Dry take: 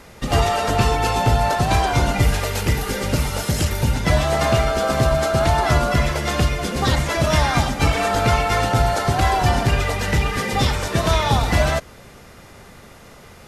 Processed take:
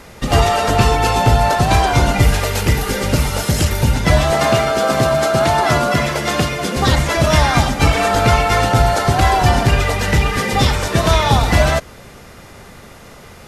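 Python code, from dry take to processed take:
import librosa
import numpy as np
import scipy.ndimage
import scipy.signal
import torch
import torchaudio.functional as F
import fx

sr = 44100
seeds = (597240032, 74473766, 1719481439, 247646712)

y = fx.highpass(x, sr, hz=130.0, slope=12, at=(4.31, 6.77))
y = y * librosa.db_to_amplitude(4.5)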